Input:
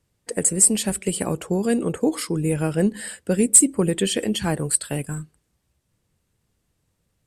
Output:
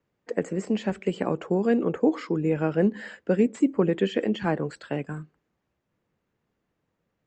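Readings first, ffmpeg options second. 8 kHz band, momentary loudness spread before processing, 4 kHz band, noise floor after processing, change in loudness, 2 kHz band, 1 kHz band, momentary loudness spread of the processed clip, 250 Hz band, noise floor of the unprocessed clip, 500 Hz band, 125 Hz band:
below −30 dB, 14 LU, −11.0 dB, −79 dBFS, −6.0 dB, −2.0 dB, 0.0 dB, 9 LU, −2.0 dB, −73 dBFS, 0.0 dB, −4.5 dB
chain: -filter_complex "[0:a]acrossover=split=170 2500:gain=0.2 1 0.178[link_01][link_02][link_03];[link_01][link_02][link_03]amix=inputs=3:normalize=0,aresample=16000,aresample=44100,acrossover=split=3100[link_04][link_05];[link_05]acompressor=threshold=-44dB:ratio=4:attack=1:release=60[link_06];[link_04][link_06]amix=inputs=2:normalize=0"

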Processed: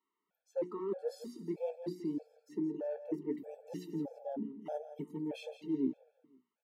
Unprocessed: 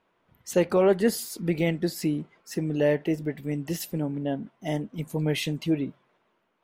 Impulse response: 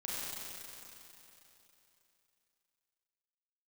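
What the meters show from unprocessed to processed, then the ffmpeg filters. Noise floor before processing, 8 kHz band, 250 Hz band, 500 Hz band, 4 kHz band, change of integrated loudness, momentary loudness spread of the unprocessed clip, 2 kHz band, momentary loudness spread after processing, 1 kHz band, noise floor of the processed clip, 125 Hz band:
−72 dBFS, below −25 dB, −10.5 dB, −13.0 dB, −21.0 dB, −12.5 dB, 11 LU, −24.5 dB, 8 LU, −13.0 dB, below −85 dBFS, −20.5 dB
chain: -filter_complex "[0:a]acrossover=split=6700[link_01][link_02];[link_02]acompressor=threshold=-49dB:ratio=4:attack=1:release=60[link_03];[link_01][link_03]amix=inputs=2:normalize=0,afwtdn=0.0316,highpass=frequency=230:width=0.5412,highpass=frequency=230:width=1.3066,bandreject=frequency=60:width_type=h:width=6,bandreject=frequency=120:width_type=h:width=6,bandreject=frequency=180:width_type=h:width=6,bandreject=frequency=240:width_type=h:width=6,bandreject=frequency=300:width_type=h:width=6,bandreject=frequency=360:width_type=h:width=6,areverse,acompressor=threshold=-33dB:ratio=16,areverse,flanger=delay=3:depth=6.8:regen=68:speed=0.57:shape=triangular,asplit=2[link_04][link_05];[link_05]aecho=0:1:168|336|504:0.251|0.0804|0.0257[link_06];[link_04][link_06]amix=inputs=2:normalize=0,afftfilt=real='re*gt(sin(2*PI*1.6*pts/sr)*(1-2*mod(floor(b*sr/1024/450),2)),0)':imag='im*gt(sin(2*PI*1.6*pts/sr)*(1-2*mod(floor(b*sr/1024/450),2)),0)':win_size=1024:overlap=0.75,volume=6dB"

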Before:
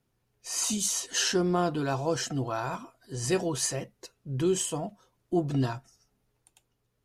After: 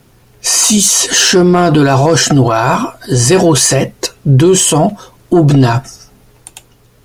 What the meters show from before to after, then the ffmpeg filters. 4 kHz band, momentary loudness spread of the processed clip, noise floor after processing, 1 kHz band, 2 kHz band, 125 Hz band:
+20.0 dB, 9 LU, −47 dBFS, +19.5 dB, +20.0 dB, +22.0 dB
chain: -filter_complex "[0:a]asplit=2[link_01][link_02];[link_02]aeval=exprs='0.188*sin(PI/2*1.78*val(0)/0.188)':channel_layout=same,volume=-7dB[link_03];[link_01][link_03]amix=inputs=2:normalize=0,alimiter=level_in=23dB:limit=-1dB:release=50:level=0:latency=1,volume=-1dB"

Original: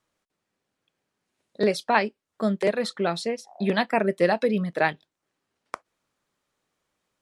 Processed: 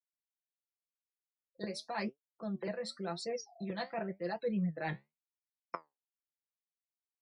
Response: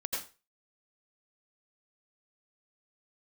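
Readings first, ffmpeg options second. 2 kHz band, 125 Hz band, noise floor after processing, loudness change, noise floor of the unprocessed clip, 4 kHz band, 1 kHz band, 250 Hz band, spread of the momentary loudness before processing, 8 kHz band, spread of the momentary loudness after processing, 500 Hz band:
−16.5 dB, −8.5 dB, below −85 dBFS, −14.5 dB, −83 dBFS, −12.0 dB, −15.5 dB, −11.5 dB, 11 LU, −9.0 dB, 12 LU, −15.5 dB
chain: -filter_complex "[0:a]afftfilt=real='re*gte(hypot(re,im),0.0178)':imag='im*gte(hypot(re,im),0.0178)':win_size=1024:overlap=0.75,acrossover=split=550[link_01][link_02];[link_01]asubboost=boost=2:cutoff=150[link_03];[link_02]aexciter=amount=10:drive=1.8:freq=4500[link_04];[link_03][link_04]amix=inputs=2:normalize=0,aecho=1:1:5.9:0.92,areverse,acompressor=threshold=-31dB:ratio=10,areverse,aemphasis=mode=reproduction:type=75kf,flanger=delay=6.5:depth=9.7:regen=63:speed=0.91:shape=triangular,volume=1.5dB"

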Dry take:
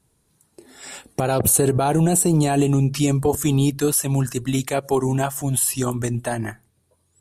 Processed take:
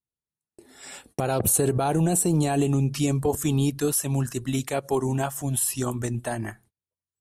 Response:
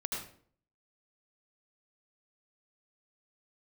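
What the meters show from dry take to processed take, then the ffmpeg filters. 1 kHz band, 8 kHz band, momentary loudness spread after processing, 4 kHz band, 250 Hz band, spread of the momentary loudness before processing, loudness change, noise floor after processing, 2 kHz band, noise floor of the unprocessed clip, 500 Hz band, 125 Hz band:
−4.5 dB, −4.5 dB, 9 LU, −4.5 dB, −4.5 dB, 9 LU, −4.5 dB, below −85 dBFS, −4.5 dB, −67 dBFS, −4.5 dB, −4.5 dB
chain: -af "agate=range=-28dB:threshold=-49dB:ratio=16:detection=peak,volume=-4.5dB"

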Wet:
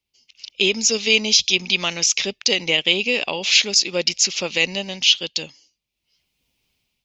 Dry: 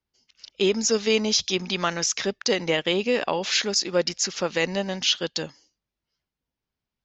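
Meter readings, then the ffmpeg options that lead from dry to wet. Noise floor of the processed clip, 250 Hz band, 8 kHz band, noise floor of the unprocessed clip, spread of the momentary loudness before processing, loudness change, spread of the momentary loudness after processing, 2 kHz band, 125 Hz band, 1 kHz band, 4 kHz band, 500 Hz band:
−80 dBFS, −1.5 dB, can't be measured, below −85 dBFS, 5 LU, +6.0 dB, 6 LU, +8.0 dB, −1.5 dB, −3.5 dB, +8.5 dB, −1.5 dB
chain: -af "highshelf=frequency=2000:width_type=q:width=3:gain=7,dynaudnorm=framelen=280:gausssize=5:maxgain=15dB,volume=-1dB"

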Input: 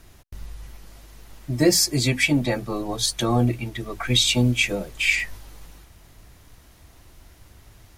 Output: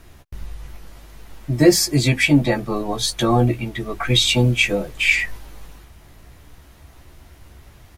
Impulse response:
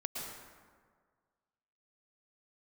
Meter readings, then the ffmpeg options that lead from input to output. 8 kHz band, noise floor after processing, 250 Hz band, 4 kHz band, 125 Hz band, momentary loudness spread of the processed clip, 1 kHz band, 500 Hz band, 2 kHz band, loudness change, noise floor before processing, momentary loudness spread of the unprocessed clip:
0.0 dB, −48 dBFS, +4.5 dB, +2.0 dB, +4.5 dB, 13 LU, +5.5 dB, +5.5 dB, +4.0 dB, +3.5 dB, −52 dBFS, 14 LU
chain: -filter_complex "[0:a]asplit=2[link_01][link_02];[link_02]adelay=14,volume=-7dB[link_03];[link_01][link_03]amix=inputs=2:normalize=0,asplit=2[link_04][link_05];[1:a]atrim=start_sample=2205,atrim=end_sample=3969,lowpass=4100[link_06];[link_05][link_06]afir=irnorm=-1:irlink=0,volume=-2.5dB[link_07];[link_04][link_07]amix=inputs=2:normalize=0"

